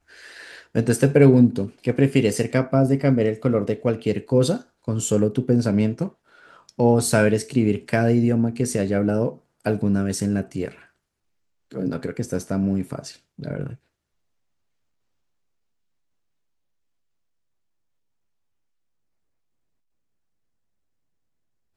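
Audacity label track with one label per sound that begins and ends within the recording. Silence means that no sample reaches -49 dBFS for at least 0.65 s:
11.710000	13.760000	sound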